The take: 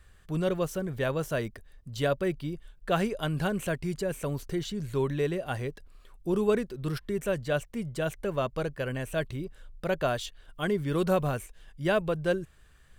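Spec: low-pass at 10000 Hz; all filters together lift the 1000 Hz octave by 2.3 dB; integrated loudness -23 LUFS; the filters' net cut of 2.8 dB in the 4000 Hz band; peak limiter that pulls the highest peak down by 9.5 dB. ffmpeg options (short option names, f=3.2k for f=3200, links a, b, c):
-af "lowpass=10k,equalizer=f=1k:t=o:g=3.5,equalizer=f=4k:t=o:g=-4,volume=10dB,alimiter=limit=-12dB:level=0:latency=1"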